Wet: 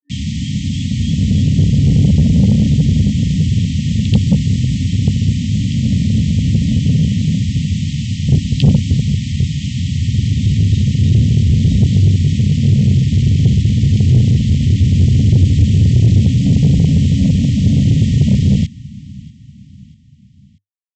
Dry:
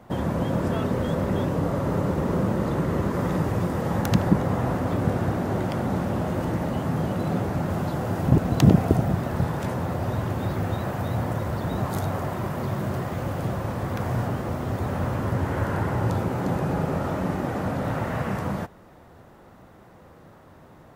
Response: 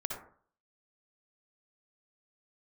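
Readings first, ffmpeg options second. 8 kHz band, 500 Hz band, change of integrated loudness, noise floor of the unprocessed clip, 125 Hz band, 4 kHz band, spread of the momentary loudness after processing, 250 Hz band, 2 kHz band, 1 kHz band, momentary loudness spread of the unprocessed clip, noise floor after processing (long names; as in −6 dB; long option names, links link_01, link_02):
+12.5 dB, −5.5 dB, +12.5 dB, −50 dBFS, +15.0 dB, +15.5 dB, 7 LU, +10.5 dB, +0.5 dB, below −15 dB, 6 LU, −43 dBFS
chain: -filter_complex "[0:a]aresample=11025,aresample=44100,equalizer=frequency=2000:width=4.5:gain=-11.5,asplit=2[link_01][link_02];[link_02]adelay=14,volume=-9dB[link_03];[link_01][link_03]amix=inputs=2:normalize=0,aresample=16000,acrusher=bits=5:mix=0:aa=0.000001,aresample=44100,equalizer=frequency=100:width_type=o:width=0.33:gain=6,equalizer=frequency=315:width_type=o:width=0.33:gain=-11,equalizer=frequency=1600:width_type=o:width=0.33:gain=-7,equalizer=frequency=3150:width_type=o:width=0.33:gain=7,acrossover=split=420[link_04][link_05];[link_04]dynaudnorm=framelen=210:gausssize=13:maxgain=15.5dB[link_06];[link_06][link_05]amix=inputs=2:normalize=0,asoftclip=type=hard:threshold=-3.5dB,aecho=1:1:639|1278|1917:0.075|0.0352|0.0166,afftfilt=real='re*(1-between(b*sr/4096,290,1800))':imag='im*(1-between(b*sr/4096,290,1800))':win_size=4096:overlap=0.75,acontrast=70,volume=-1dB"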